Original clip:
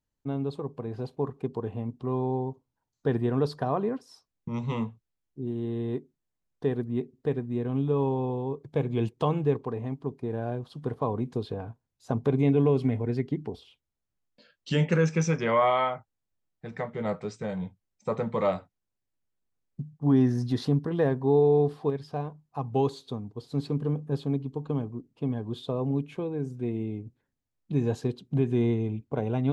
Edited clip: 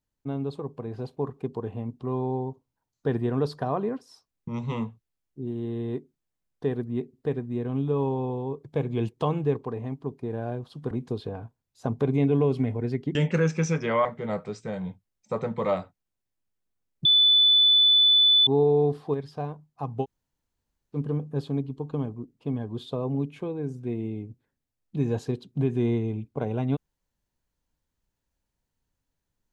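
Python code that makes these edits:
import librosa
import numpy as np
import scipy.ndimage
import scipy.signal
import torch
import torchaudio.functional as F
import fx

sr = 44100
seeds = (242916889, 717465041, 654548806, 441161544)

y = fx.edit(x, sr, fx.cut(start_s=10.91, length_s=0.25),
    fx.cut(start_s=13.4, length_s=1.33),
    fx.cut(start_s=15.63, length_s=1.18),
    fx.bleep(start_s=19.81, length_s=1.42, hz=3490.0, db=-15.0),
    fx.room_tone_fill(start_s=22.79, length_s=0.92, crossfade_s=0.06), tone=tone)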